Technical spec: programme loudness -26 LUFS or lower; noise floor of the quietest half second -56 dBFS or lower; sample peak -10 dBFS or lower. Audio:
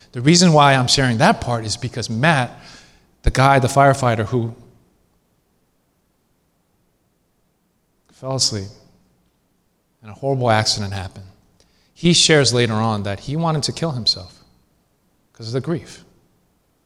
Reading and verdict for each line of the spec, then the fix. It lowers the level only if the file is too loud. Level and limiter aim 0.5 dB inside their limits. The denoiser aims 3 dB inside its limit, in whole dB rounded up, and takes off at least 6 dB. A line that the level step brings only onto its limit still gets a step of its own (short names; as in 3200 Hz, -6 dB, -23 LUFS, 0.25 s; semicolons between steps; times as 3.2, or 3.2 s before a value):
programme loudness -17.0 LUFS: fail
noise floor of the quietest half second -65 dBFS: OK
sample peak -1.5 dBFS: fail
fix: gain -9.5 dB